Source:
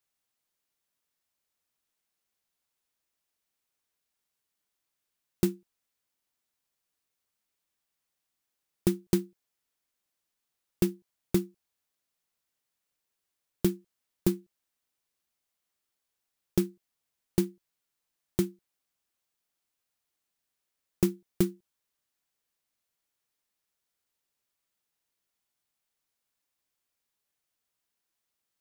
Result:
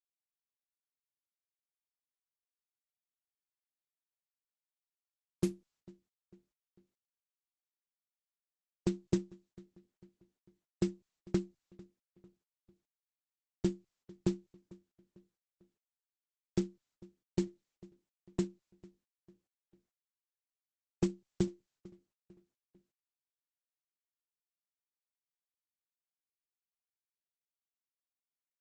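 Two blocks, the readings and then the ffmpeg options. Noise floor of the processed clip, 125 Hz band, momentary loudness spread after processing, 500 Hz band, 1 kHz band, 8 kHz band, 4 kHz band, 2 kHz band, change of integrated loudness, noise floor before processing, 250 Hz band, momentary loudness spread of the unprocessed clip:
below −85 dBFS, −5.0 dB, 15 LU, −6.0 dB, −5.5 dB, −10.0 dB, −7.5 dB, −7.0 dB, −6.0 dB, −84 dBFS, −6.0 dB, 7 LU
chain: -filter_complex "[0:a]adynamicequalizer=threshold=0.00562:dfrequency=120:dqfactor=2.4:tfrequency=120:tqfactor=2.4:attack=5:release=100:ratio=0.375:range=3:mode=boostabove:tftype=bell,agate=range=-33dB:threshold=-60dB:ratio=3:detection=peak,asplit=2[link_01][link_02];[link_02]adelay=448,lowpass=frequency=4100:poles=1,volume=-22.5dB,asplit=2[link_03][link_04];[link_04]adelay=448,lowpass=frequency=4100:poles=1,volume=0.47,asplit=2[link_05][link_06];[link_06]adelay=448,lowpass=frequency=4100:poles=1,volume=0.47[link_07];[link_01][link_03][link_05][link_07]amix=inputs=4:normalize=0,volume=-6dB" -ar 48000 -c:a libopus -b:a 12k

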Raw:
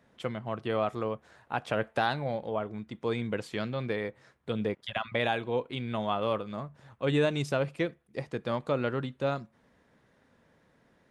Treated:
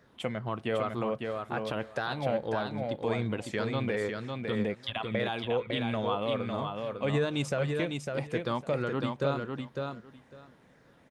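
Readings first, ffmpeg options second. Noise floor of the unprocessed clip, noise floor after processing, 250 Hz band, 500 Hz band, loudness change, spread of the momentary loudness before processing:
−67 dBFS, −61 dBFS, +1.0 dB, 0.0 dB, 0.0 dB, 9 LU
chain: -af "afftfilt=real='re*pow(10,7/40*sin(2*PI*(0.57*log(max(b,1)*sr/1024/100)/log(2)-(-2.5)*(pts-256)/sr)))':imag='im*pow(10,7/40*sin(2*PI*(0.57*log(max(b,1)*sr/1024/100)/log(2)-(-2.5)*(pts-256)/sr)))':win_size=1024:overlap=0.75,alimiter=limit=-22.5dB:level=0:latency=1:release=196,aecho=1:1:553|1106|1659:0.596|0.0893|0.0134,volume=2.5dB"

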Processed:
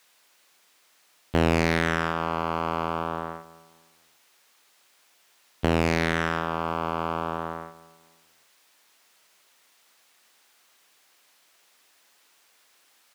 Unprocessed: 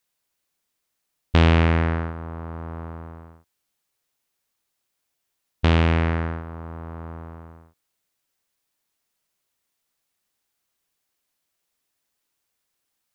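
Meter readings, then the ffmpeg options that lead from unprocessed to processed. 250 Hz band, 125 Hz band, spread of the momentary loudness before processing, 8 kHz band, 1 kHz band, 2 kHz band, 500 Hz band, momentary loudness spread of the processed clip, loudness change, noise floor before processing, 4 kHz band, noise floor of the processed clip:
−2.0 dB, −8.5 dB, 19 LU, can't be measured, +4.0 dB, +1.5 dB, +2.0 dB, 12 LU, −5.0 dB, −78 dBFS, −1.0 dB, −63 dBFS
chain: -filter_complex "[0:a]asplit=2[link_01][link_02];[link_02]highpass=frequency=720:poles=1,volume=32dB,asoftclip=type=tanh:threshold=-4dB[link_03];[link_01][link_03]amix=inputs=2:normalize=0,lowpass=frequency=4400:poles=1,volume=-6dB,highpass=92,asplit=2[link_04][link_05];[link_05]adelay=260,lowpass=frequency=2000:poles=1,volume=-17dB,asplit=2[link_06][link_07];[link_07]adelay=260,lowpass=frequency=2000:poles=1,volume=0.34,asplit=2[link_08][link_09];[link_09]adelay=260,lowpass=frequency=2000:poles=1,volume=0.34[link_10];[link_04][link_06][link_08][link_10]amix=inputs=4:normalize=0,volume=-5dB"

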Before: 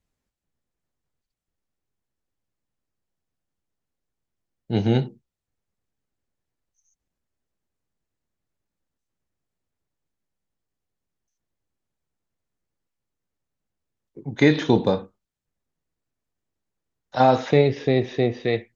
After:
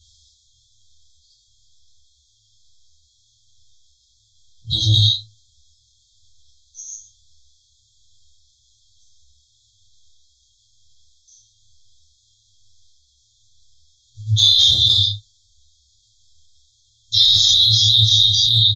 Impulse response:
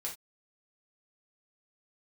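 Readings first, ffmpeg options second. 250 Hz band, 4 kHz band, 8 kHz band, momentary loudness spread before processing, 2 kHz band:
−18.0 dB, +26.0 dB, can't be measured, 13 LU, below −20 dB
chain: -filter_complex "[0:a]asplit=2[link_01][link_02];[link_02]equalizer=frequency=2100:width=0.39:gain=12[link_03];[1:a]atrim=start_sample=2205,asetrate=26019,aresample=44100[link_04];[link_03][link_04]afir=irnorm=-1:irlink=0,volume=-6.5dB[link_05];[link_01][link_05]amix=inputs=2:normalize=0,afftfilt=real='re*(1-between(b*sr/4096,110,3200))':imag='im*(1-between(b*sr/4096,110,3200))':win_size=4096:overlap=0.75,aresample=16000,aresample=44100,asplit=2[link_06][link_07];[link_07]asoftclip=type=tanh:threshold=-27dB,volume=-10.5dB[link_08];[link_06][link_08]amix=inputs=2:normalize=0,lowshelf=frequency=93:gain=-12,aecho=1:1:13|28:0.141|0.531,acrossover=split=2800[link_09][link_10];[link_10]acompressor=threshold=-37dB:ratio=4:attack=1:release=60[link_11];[link_09][link_11]amix=inputs=2:normalize=0,alimiter=level_in=30dB:limit=-1dB:release=50:level=0:latency=1,asplit=2[link_12][link_13];[link_13]adelay=8.3,afreqshift=-1.1[link_14];[link_12][link_14]amix=inputs=2:normalize=1,volume=-1dB"

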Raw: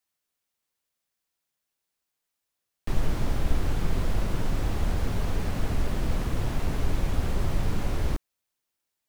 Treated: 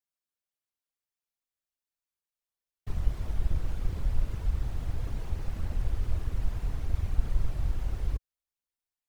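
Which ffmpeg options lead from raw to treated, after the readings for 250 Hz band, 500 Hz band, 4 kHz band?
−12.0 dB, −12.5 dB, −12.0 dB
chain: -af "afftfilt=real='hypot(re,im)*cos(2*PI*random(0))':imag='hypot(re,im)*sin(2*PI*random(1))':win_size=512:overlap=0.75,asubboost=boost=5:cutoff=73,volume=-6dB"

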